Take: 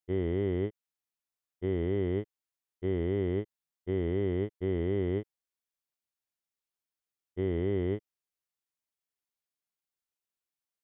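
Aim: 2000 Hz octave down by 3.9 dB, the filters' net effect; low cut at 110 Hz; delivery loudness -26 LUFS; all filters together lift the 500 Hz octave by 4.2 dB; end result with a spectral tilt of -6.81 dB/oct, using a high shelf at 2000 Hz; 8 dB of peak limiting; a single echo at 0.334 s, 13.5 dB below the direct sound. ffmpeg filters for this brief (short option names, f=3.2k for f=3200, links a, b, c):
-af "highpass=110,equalizer=f=500:t=o:g=6,highshelf=f=2k:g=7,equalizer=f=2k:t=o:g=-8,alimiter=level_in=2.5dB:limit=-24dB:level=0:latency=1,volume=-2.5dB,aecho=1:1:334:0.211,volume=10.5dB"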